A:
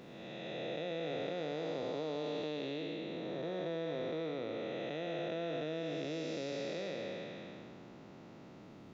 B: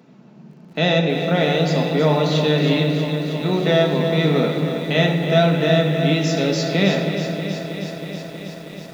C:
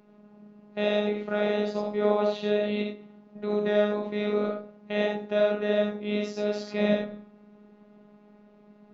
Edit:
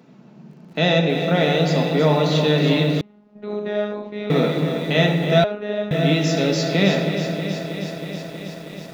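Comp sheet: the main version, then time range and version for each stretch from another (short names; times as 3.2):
B
3.01–4.3 from C
5.44–5.91 from C
not used: A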